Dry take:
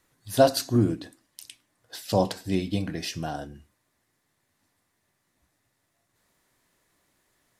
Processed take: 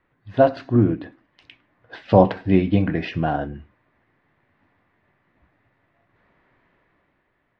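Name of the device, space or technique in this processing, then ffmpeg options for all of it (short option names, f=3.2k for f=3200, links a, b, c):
action camera in a waterproof case: -af "lowpass=f=2.5k:w=0.5412,lowpass=f=2.5k:w=1.3066,dynaudnorm=f=190:g=9:m=8dB,volume=2.5dB" -ar 48000 -c:a aac -b:a 64k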